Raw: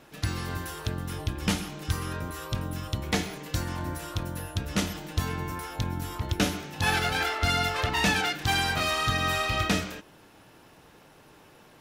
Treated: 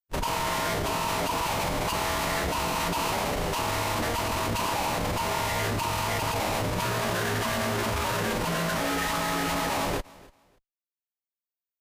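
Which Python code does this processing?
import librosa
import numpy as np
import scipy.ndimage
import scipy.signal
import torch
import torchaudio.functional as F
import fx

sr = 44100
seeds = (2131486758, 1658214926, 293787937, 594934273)

p1 = fx.band_invert(x, sr, width_hz=1000)
p2 = fx.env_lowpass_down(p1, sr, base_hz=1500.0, full_db=-25.0)
p3 = fx.level_steps(p2, sr, step_db=13)
p4 = p2 + F.gain(torch.from_numpy(p3), 3.0).numpy()
p5 = fx.schmitt(p4, sr, flips_db=-35.5)
p6 = p5 + fx.echo_feedback(p5, sr, ms=290, feedback_pct=22, wet_db=-22.0, dry=0)
y = fx.pitch_keep_formants(p6, sr, semitones=-6.5)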